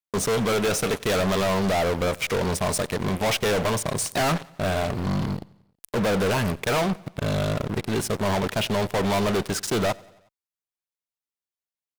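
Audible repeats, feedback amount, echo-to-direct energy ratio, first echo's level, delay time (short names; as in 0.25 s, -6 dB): 3, 57%, -22.5 dB, -24.0 dB, 91 ms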